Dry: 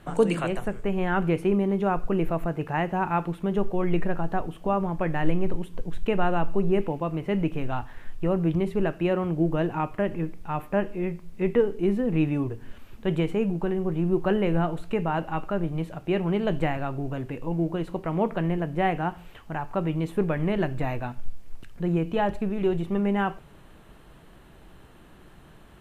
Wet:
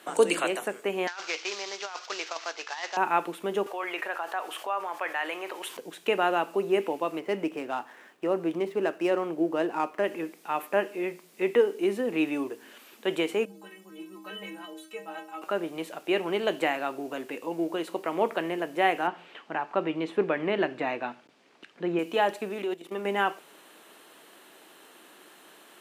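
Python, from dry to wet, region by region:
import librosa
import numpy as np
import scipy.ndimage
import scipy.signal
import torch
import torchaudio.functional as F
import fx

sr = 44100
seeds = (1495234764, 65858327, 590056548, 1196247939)

y = fx.chain(x, sr, fx.cvsd(bps=32000),
    fx.highpass(hz=1000.0, slope=12),
    fx.over_compress(threshold_db=-35.0, ratio=-0.5), at=(1.07, 2.97))
y = fx.chain(y, sr, fx.highpass(hz=970.0, slope=12),
    fx.high_shelf(hz=2600.0, db=-9.0),
    fx.env_flatten(amount_pct=50), at=(3.66, 5.77))
y = fx.chain(y, sr, fx.median_filter(points=9),
    fx.high_shelf(hz=2300.0, db=-7.5), at=(7.19, 10.04))
y = fx.chain(y, sr, fx.high_shelf(hz=2400.0, db=9.0),
    fx.stiff_resonator(f0_hz=94.0, decay_s=0.74, stiffness=0.03), at=(13.45, 15.42))
y = fx.chain(y, sr, fx.lowpass(hz=3500.0, slope=12),
    fx.low_shelf(hz=140.0, db=11.0),
    fx.clip_hard(threshold_db=-6.5), at=(19.07, 21.99))
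y = fx.chain(y, sr, fx.highpass(hz=110.0, slope=6),
    fx.level_steps(step_db=14), at=(22.62, 23.05))
y = scipy.signal.sosfilt(scipy.signal.butter(4, 290.0, 'highpass', fs=sr, output='sos'), y)
y = fx.high_shelf(y, sr, hz=2500.0, db=11.0)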